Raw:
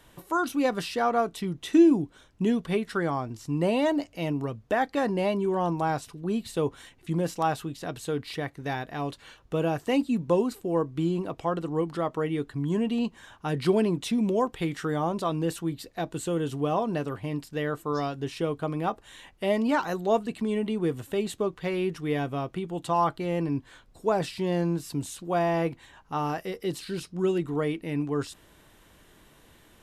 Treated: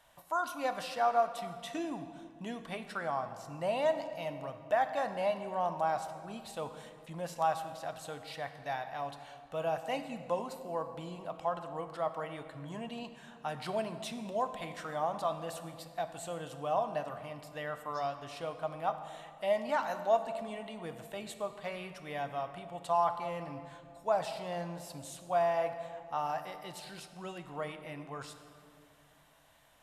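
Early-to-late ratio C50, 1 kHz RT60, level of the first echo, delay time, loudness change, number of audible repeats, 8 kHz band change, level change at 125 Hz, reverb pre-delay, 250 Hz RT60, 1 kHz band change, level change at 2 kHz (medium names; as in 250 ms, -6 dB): 9.5 dB, 2.1 s, no echo, no echo, -8.0 dB, no echo, -7.0 dB, -15.0 dB, 24 ms, 3.1 s, -3.0 dB, -6.5 dB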